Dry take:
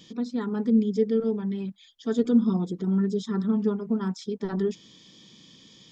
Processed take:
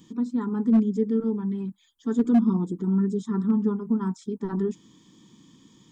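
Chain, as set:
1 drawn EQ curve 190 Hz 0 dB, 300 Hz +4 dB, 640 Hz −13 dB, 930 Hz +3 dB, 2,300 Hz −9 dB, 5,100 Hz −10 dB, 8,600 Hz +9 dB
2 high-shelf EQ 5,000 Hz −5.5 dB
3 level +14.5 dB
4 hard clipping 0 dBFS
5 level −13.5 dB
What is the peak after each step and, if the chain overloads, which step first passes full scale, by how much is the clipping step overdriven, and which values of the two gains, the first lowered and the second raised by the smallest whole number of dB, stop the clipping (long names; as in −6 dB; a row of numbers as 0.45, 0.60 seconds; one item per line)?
−9.5, −9.5, +5.0, 0.0, −13.5 dBFS
step 3, 5.0 dB
step 3 +9.5 dB, step 5 −8.5 dB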